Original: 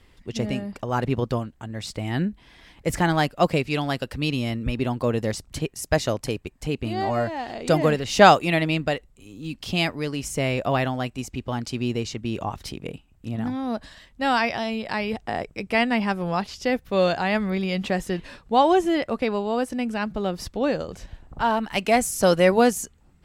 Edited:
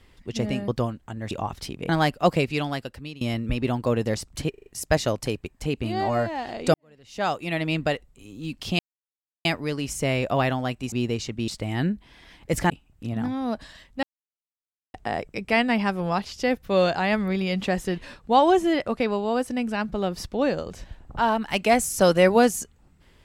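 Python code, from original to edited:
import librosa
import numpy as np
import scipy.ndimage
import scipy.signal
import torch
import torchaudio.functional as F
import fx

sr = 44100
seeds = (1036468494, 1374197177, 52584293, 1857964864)

y = fx.edit(x, sr, fx.cut(start_s=0.68, length_s=0.53),
    fx.swap(start_s=1.84, length_s=1.22, other_s=12.34, other_length_s=0.58),
    fx.fade_out_to(start_s=3.65, length_s=0.73, floor_db=-21.0),
    fx.stutter(start_s=5.67, slice_s=0.04, count=5),
    fx.fade_in_span(start_s=7.75, length_s=1.09, curve='qua'),
    fx.insert_silence(at_s=9.8, length_s=0.66),
    fx.cut(start_s=11.27, length_s=0.51),
    fx.silence(start_s=14.25, length_s=0.91), tone=tone)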